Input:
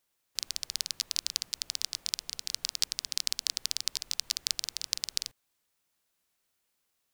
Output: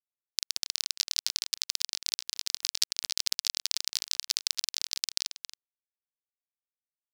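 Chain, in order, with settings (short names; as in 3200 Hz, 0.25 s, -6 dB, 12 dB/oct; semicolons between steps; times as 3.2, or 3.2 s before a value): bit-crush 8-bit; outdoor echo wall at 47 m, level -10 dB; sample leveller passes 1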